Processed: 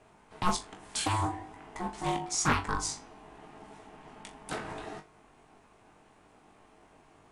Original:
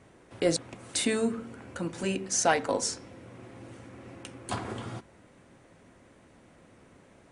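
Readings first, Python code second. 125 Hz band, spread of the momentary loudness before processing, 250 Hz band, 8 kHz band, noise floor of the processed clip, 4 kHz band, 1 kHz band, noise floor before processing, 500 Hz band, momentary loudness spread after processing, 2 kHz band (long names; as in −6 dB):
+2.0 dB, 21 LU, −5.0 dB, −3.5 dB, −61 dBFS, −2.5 dB, +2.0 dB, −58 dBFS, −10.0 dB, 22 LU, −1.5 dB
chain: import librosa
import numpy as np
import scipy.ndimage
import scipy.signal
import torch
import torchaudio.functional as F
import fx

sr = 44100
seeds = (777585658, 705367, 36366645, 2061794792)

y = x * np.sin(2.0 * np.pi * 540.0 * np.arange(len(x)) / sr)
y = fx.room_flutter(y, sr, wall_m=3.5, rt60_s=0.2)
y = fx.doppler_dist(y, sr, depth_ms=0.43)
y = F.gain(torch.from_numpy(y), -1.0).numpy()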